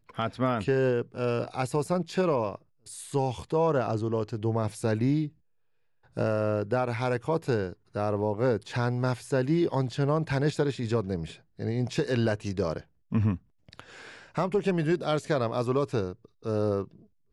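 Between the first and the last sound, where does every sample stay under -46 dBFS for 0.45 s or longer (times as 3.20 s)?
5.29–6.16 s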